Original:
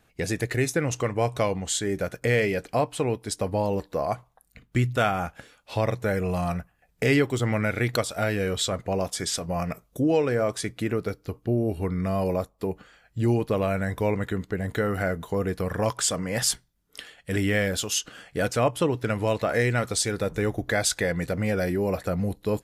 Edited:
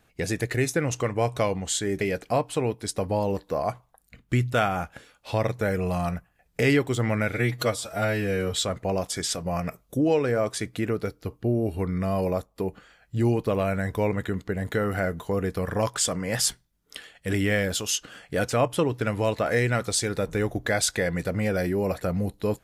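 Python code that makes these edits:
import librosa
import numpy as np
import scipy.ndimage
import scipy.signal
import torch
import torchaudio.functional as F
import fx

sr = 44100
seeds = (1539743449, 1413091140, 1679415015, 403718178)

y = fx.edit(x, sr, fx.cut(start_s=2.01, length_s=0.43),
    fx.stretch_span(start_s=7.76, length_s=0.8, factor=1.5), tone=tone)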